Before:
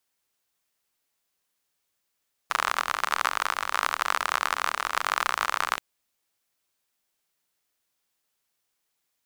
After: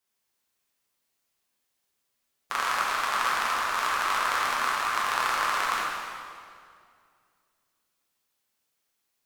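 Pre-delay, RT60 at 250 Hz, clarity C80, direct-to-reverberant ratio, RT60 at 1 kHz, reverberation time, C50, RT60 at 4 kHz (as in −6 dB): 6 ms, 2.5 s, 0.5 dB, −5.5 dB, 2.1 s, 2.2 s, −1.5 dB, 1.8 s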